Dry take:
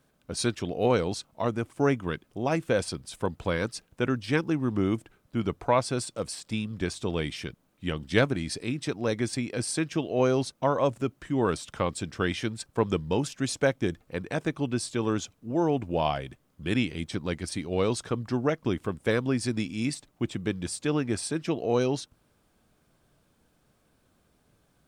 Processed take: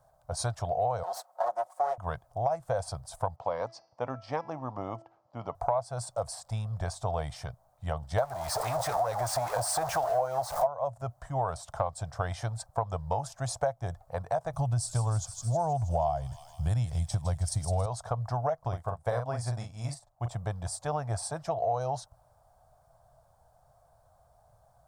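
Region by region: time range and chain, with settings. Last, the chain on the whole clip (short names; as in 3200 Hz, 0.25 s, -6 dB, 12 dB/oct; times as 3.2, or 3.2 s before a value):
1.03–1.98 minimum comb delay 5.5 ms + HPF 310 Hz 24 dB/oct
3.36–5.55 speaker cabinet 250–5100 Hz, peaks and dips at 260 Hz +10 dB, 690 Hz -5 dB, 1500 Hz -9 dB, 3800 Hz -7 dB + de-hum 332 Hz, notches 19
8.18–10.67 zero-crossing step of -26.5 dBFS + low shelf 240 Hz -8.5 dB + LFO bell 4.9 Hz 570–2600 Hz +9 dB
14.53–17.86 tone controls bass +12 dB, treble +11 dB + thin delay 0.159 s, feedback 66%, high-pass 3300 Hz, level -8 dB
18.68–20.28 doubler 42 ms -5 dB + upward expander, over -43 dBFS
whole clip: EQ curve 120 Hz 0 dB, 240 Hz -25 dB, 370 Hz -23 dB, 680 Hz +11 dB, 2600 Hz -22 dB, 4700 Hz -10 dB, 8400 Hz -7 dB; compressor 6:1, threshold -31 dBFS; gain +5 dB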